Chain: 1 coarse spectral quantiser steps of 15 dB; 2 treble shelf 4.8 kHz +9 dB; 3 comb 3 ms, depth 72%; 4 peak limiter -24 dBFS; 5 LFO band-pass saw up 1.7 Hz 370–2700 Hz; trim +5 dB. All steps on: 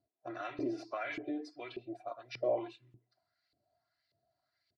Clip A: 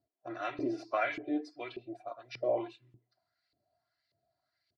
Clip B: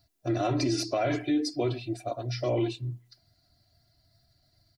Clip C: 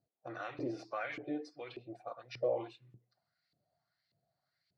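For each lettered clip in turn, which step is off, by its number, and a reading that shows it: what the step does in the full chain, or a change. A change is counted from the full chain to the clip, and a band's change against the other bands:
4, 1 kHz band +3.0 dB; 5, 125 Hz band +16.0 dB; 3, 125 Hz band +4.5 dB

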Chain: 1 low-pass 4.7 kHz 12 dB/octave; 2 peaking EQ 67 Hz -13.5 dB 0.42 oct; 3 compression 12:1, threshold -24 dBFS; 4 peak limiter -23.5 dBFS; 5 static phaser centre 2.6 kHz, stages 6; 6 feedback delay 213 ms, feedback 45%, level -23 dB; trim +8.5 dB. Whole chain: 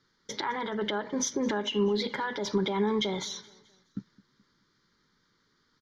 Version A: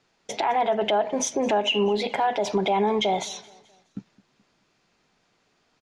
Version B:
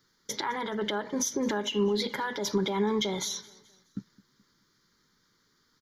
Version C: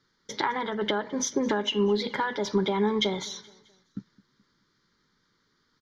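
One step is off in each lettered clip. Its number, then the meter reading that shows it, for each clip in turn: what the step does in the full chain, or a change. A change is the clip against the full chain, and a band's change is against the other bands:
5, 1 kHz band +7.0 dB; 1, momentary loudness spread change -2 LU; 4, mean gain reduction 2.0 dB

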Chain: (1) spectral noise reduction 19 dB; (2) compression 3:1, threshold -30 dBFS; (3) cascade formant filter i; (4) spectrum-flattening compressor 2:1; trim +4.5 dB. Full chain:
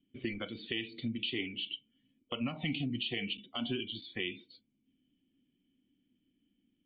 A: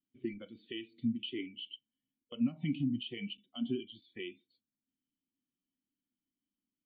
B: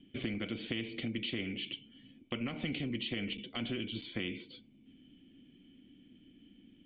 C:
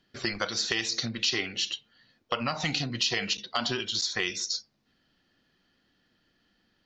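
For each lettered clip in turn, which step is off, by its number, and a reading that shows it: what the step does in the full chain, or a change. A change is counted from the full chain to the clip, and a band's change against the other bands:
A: 4, 2 kHz band -8.5 dB; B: 1, 4 kHz band -2.5 dB; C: 3, 250 Hz band -8.5 dB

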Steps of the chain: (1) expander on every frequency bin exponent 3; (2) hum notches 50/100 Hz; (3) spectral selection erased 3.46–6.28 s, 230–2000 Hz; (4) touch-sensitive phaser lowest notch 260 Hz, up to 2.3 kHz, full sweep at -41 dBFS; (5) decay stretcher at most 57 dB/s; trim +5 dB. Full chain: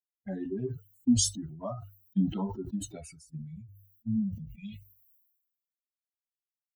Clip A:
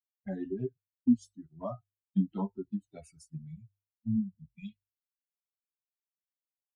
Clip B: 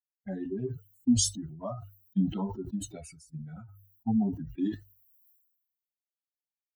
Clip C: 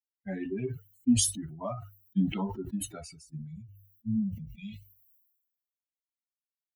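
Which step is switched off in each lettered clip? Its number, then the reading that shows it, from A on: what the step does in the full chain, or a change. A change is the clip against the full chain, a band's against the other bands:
5, 125 Hz band -2.5 dB; 3, 1 kHz band +2.0 dB; 4, 1 kHz band +2.5 dB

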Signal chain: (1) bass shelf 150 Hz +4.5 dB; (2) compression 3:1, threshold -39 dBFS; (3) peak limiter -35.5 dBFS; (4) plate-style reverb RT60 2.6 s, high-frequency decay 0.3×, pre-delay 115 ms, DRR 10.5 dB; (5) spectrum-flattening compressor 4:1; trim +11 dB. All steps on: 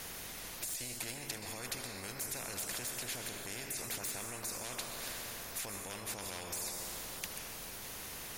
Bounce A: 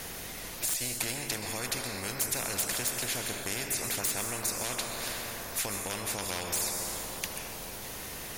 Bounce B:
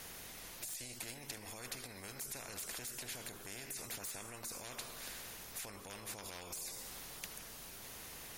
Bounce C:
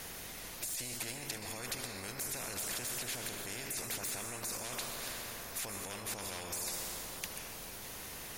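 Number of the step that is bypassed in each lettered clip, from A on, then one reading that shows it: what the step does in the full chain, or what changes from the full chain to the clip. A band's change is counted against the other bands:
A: 3, mean gain reduction 2.5 dB; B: 4, crest factor change +2.0 dB; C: 2, mean gain reduction 9.0 dB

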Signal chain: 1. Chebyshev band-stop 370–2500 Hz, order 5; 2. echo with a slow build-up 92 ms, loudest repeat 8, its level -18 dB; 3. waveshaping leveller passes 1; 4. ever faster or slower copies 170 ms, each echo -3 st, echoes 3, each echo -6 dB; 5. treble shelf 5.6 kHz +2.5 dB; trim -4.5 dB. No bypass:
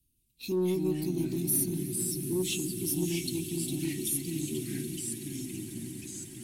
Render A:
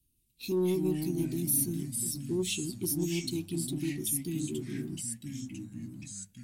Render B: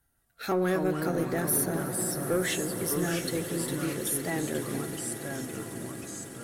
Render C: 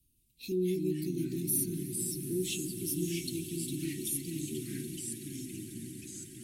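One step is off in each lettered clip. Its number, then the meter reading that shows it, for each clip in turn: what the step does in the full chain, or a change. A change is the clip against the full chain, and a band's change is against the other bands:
2, momentary loudness spread change +3 LU; 1, 1 kHz band +17.5 dB; 3, crest factor change +2.5 dB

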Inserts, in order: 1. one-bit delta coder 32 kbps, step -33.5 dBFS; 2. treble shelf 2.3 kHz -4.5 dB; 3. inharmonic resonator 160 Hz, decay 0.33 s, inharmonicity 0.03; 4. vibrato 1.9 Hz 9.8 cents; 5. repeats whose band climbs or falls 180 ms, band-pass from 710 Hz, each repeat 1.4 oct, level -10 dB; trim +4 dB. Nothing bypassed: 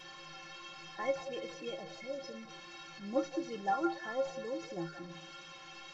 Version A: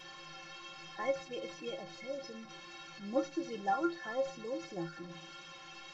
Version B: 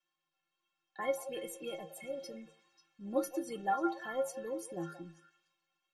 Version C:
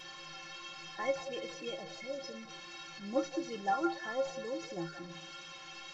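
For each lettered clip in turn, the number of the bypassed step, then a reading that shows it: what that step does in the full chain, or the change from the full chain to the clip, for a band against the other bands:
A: 5, echo-to-direct -13.0 dB to none; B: 1, 4 kHz band -6.0 dB; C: 2, 4 kHz band +3.0 dB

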